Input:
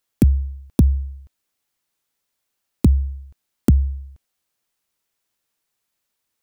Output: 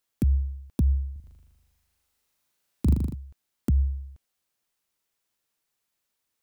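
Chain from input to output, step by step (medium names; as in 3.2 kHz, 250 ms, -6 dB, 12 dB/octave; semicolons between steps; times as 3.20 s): peak limiter -13.5 dBFS, peak gain reduction 9.5 dB; 1.12–3.15 s: flutter echo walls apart 6.8 m, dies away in 1.3 s; trim -3 dB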